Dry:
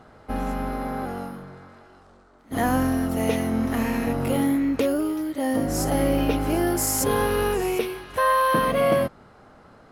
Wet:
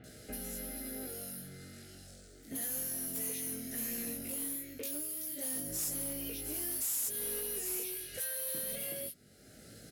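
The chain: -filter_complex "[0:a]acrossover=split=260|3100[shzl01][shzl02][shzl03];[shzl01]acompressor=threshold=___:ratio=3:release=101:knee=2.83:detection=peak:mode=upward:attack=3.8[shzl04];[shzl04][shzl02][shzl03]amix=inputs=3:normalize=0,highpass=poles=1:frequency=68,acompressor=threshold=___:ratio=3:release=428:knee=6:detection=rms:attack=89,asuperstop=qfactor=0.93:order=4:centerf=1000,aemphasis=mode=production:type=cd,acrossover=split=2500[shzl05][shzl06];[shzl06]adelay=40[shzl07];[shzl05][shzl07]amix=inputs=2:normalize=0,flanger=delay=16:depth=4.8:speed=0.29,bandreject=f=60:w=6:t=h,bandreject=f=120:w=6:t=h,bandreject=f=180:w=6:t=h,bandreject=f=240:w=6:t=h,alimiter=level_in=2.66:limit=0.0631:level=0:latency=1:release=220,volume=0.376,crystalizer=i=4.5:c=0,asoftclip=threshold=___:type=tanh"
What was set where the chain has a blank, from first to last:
0.00631, 0.00891, 0.0251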